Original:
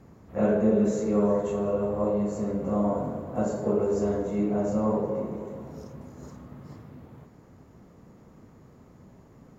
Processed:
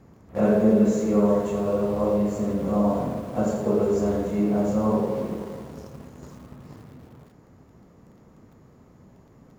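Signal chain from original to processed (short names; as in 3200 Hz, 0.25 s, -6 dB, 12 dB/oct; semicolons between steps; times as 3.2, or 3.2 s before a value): in parallel at -9 dB: sample gate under -35 dBFS; on the sum: lo-fi delay 82 ms, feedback 35%, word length 8-bit, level -9 dB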